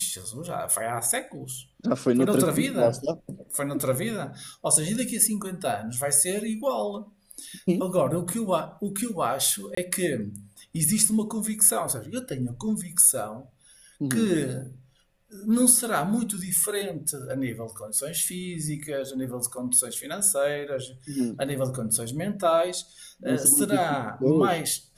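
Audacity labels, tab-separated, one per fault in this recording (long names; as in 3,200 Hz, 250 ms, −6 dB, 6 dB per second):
9.750000	9.770000	drop-out 24 ms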